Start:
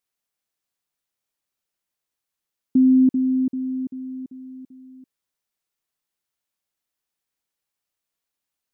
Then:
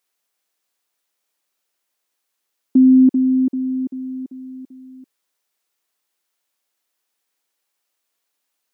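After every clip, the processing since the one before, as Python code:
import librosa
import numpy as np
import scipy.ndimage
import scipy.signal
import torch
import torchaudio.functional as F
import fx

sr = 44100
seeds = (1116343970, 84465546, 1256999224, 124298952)

y = scipy.signal.sosfilt(scipy.signal.butter(2, 290.0, 'highpass', fs=sr, output='sos'), x)
y = y * 10.0 ** (8.5 / 20.0)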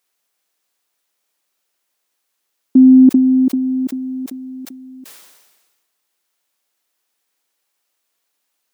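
y = fx.sustainer(x, sr, db_per_s=42.0)
y = y * 10.0 ** (3.5 / 20.0)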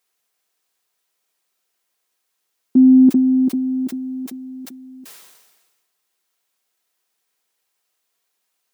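y = fx.notch_comb(x, sr, f0_hz=290.0)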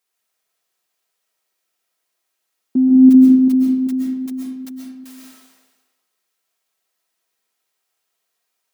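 y = fx.rev_freeverb(x, sr, rt60_s=0.89, hf_ratio=0.65, predelay_ms=90, drr_db=-2.0)
y = y * 10.0 ** (-4.0 / 20.0)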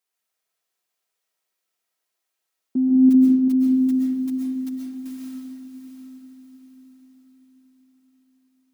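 y = fx.echo_diffused(x, sr, ms=707, feedback_pct=44, wet_db=-8.5)
y = y * 10.0 ** (-6.0 / 20.0)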